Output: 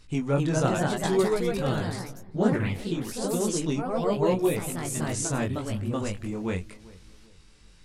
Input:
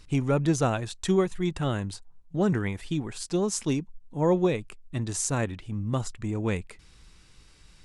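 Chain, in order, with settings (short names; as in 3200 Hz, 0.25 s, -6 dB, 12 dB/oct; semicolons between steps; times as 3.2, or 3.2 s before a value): chorus 0.86 Hz, delay 18 ms, depth 5 ms; darkening echo 0.393 s, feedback 38%, low-pass 1300 Hz, level -20 dB; echoes that change speed 0.269 s, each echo +2 st, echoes 3; gain +1.5 dB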